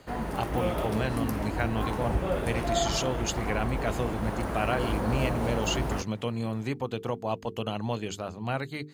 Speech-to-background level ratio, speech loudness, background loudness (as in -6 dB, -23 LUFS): -0.5 dB, -32.0 LUFS, -31.5 LUFS